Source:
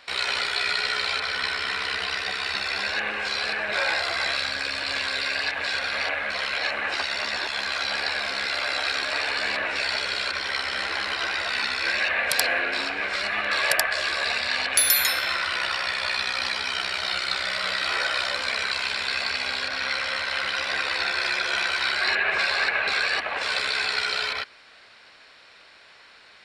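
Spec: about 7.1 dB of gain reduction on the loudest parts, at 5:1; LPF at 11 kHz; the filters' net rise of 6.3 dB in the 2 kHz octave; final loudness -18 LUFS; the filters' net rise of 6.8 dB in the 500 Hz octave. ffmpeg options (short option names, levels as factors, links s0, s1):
-af "lowpass=11000,equalizer=f=500:t=o:g=8,equalizer=f=2000:t=o:g=7.5,acompressor=threshold=0.0891:ratio=5,volume=1.78"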